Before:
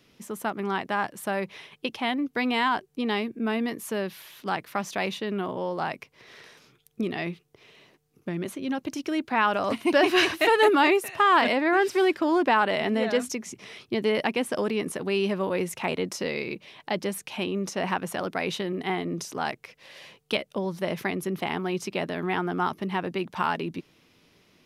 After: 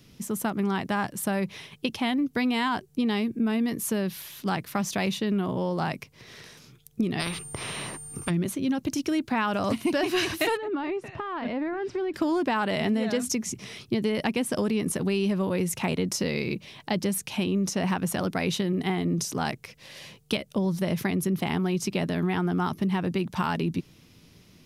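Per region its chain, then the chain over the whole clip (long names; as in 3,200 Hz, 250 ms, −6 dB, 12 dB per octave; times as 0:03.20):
0:07.19–0:08.29: parametric band 1,100 Hz +11.5 dB 1.6 octaves + steady tone 9,000 Hz −53 dBFS + every bin compressed towards the loudest bin 4 to 1
0:10.57–0:12.14: downward compressor, threshold −27 dBFS + head-to-tape spacing loss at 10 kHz 32 dB
whole clip: bass and treble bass +13 dB, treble +8 dB; downward compressor, threshold −22 dBFS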